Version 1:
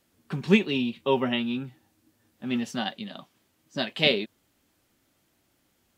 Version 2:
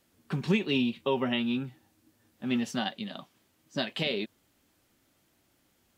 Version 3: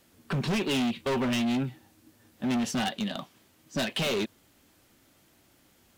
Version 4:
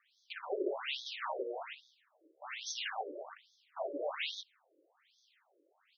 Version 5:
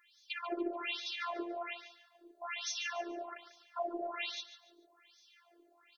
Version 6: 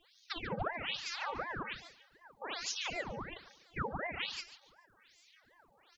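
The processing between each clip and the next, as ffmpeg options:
ffmpeg -i in.wav -af "alimiter=limit=-16dB:level=0:latency=1:release=143" out.wav
ffmpeg -i in.wav -af "asoftclip=type=hard:threshold=-32dB,volume=7dB" out.wav
ffmpeg -i in.wav -af "aeval=exprs='if(lt(val(0),0),0.251*val(0),val(0))':channel_layout=same,aecho=1:1:55.39|125.4|174.9:0.501|0.316|0.708,afftfilt=real='re*between(b*sr/1024,410*pow(4700/410,0.5+0.5*sin(2*PI*1.2*pts/sr))/1.41,410*pow(4700/410,0.5+0.5*sin(2*PI*1.2*pts/sr))*1.41)':imag='im*between(b*sr/1024,410*pow(4700/410,0.5+0.5*sin(2*PI*1.2*pts/sr))/1.41,410*pow(4700/410,0.5+0.5*sin(2*PI*1.2*pts/sr))*1.41)':win_size=1024:overlap=0.75,volume=1dB" out.wav
ffmpeg -i in.wav -af "acompressor=threshold=-45dB:ratio=2.5,afftfilt=real='hypot(re,im)*cos(PI*b)':imag='0':win_size=512:overlap=0.75,aecho=1:1:144|288|432:0.224|0.0672|0.0201,volume=10dB" out.wav
ffmpeg -i in.wav -af "aeval=exprs='val(0)*sin(2*PI*760*n/s+760*0.85/2.7*sin(2*PI*2.7*n/s))':channel_layout=same,volume=3dB" out.wav

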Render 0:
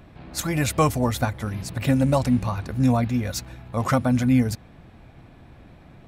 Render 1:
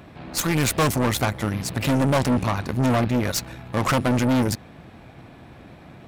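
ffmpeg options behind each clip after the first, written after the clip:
ffmpeg -i in.wav -af "aeval=exprs='0.447*(cos(1*acos(clip(val(0)/0.447,-1,1)))-cos(1*PI/2))+0.0708*(cos(8*acos(clip(val(0)/0.447,-1,1)))-cos(8*PI/2))':channel_layout=same,highpass=frequency=140:poles=1,asoftclip=type=tanh:threshold=-21.5dB,volume=6dB" out.wav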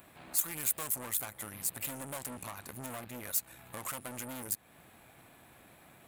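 ffmpeg -i in.wav -af "lowshelf=frequency=490:gain=-12,acompressor=threshold=-37dB:ratio=2.5,aexciter=amount=8.3:drive=2.8:freq=7500,volume=-7.5dB" out.wav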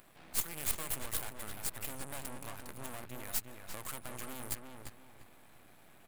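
ffmpeg -i in.wav -filter_complex "[0:a]aeval=exprs='max(val(0),0)':channel_layout=same,asplit=2[link_01][link_02];[link_02]adelay=346,lowpass=frequency=3000:poles=1,volume=-4.5dB,asplit=2[link_03][link_04];[link_04]adelay=346,lowpass=frequency=3000:poles=1,volume=0.31,asplit=2[link_05][link_06];[link_06]adelay=346,lowpass=frequency=3000:poles=1,volume=0.31,asplit=2[link_07][link_08];[link_08]adelay=346,lowpass=frequency=3000:poles=1,volume=0.31[link_09];[link_01][link_03][link_05][link_07][link_09]amix=inputs=5:normalize=0" out.wav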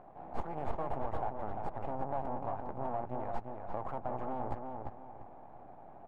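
ffmpeg -i in.wav -af "lowpass=frequency=790:width_type=q:width=3.8,volume=5dB" out.wav

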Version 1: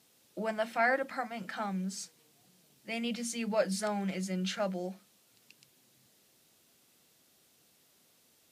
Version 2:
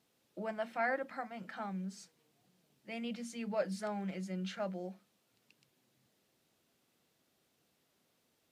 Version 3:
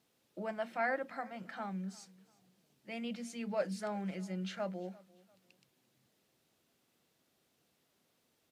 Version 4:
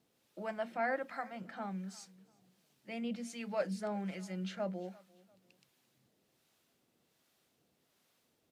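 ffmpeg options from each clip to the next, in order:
ffmpeg -i in.wav -af "equalizer=frequency=11000:width_type=o:width=2.5:gain=-9,volume=-5dB" out.wav
ffmpeg -i in.wav -af "aecho=1:1:345|690:0.075|0.0232" out.wav
ffmpeg -i in.wav -filter_complex "[0:a]acrossover=split=720[link_01][link_02];[link_01]aeval=exprs='val(0)*(1-0.5/2+0.5/2*cos(2*PI*1.3*n/s))':channel_layout=same[link_03];[link_02]aeval=exprs='val(0)*(1-0.5/2-0.5/2*cos(2*PI*1.3*n/s))':channel_layout=same[link_04];[link_03][link_04]amix=inputs=2:normalize=0,volume=2.5dB" out.wav

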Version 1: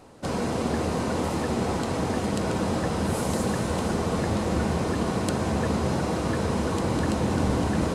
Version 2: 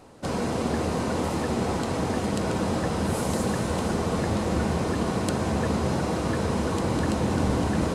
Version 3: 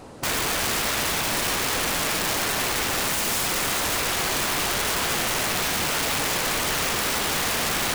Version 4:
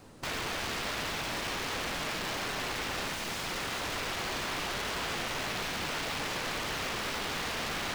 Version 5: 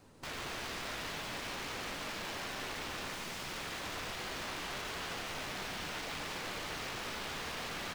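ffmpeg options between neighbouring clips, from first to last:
ffmpeg -i in.wav -af anull out.wav
ffmpeg -i in.wav -af "aeval=exprs='(mod(23.7*val(0)+1,2)-1)/23.7':channel_layout=same,volume=7.5dB" out.wav
ffmpeg -i in.wav -filter_complex "[0:a]acrossover=split=360|1600[link_01][link_02][link_03];[link_02]acrusher=bits=6:dc=4:mix=0:aa=0.000001[link_04];[link_01][link_04][link_03]amix=inputs=3:normalize=0,acrossover=split=5700[link_05][link_06];[link_06]acompressor=threshold=-37dB:ratio=4:attack=1:release=60[link_07];[link_05][link_07]amix=inputs=2:normalize=0,volume=-8.5dB" out.wav
ffmpeg -i in.wav -af "aecho=1:1:147:0.501,flanger=delay=9.9:depth=7.7:regen=-63:speed=0.77:shape=triangular,volume=-3dB" out.wav

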